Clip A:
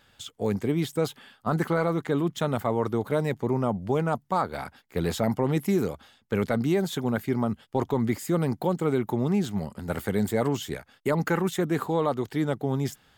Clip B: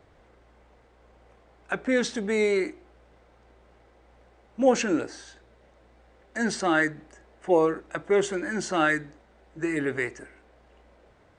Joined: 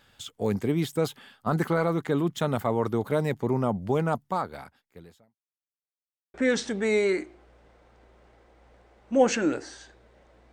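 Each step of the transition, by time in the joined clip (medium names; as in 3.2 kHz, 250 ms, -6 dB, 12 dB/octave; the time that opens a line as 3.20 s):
clip A
4.18–5.38 s: fade out quadratic
5.38–6.34 s: mute
6.34 s: go over to clip B from 1.81 s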